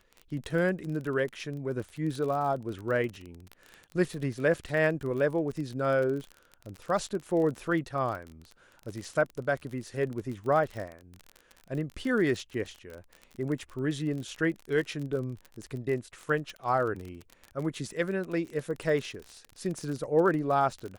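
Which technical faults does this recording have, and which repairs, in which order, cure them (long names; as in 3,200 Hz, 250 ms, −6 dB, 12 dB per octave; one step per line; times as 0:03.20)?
surface crackle 36 per second −34 dBFS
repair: click removal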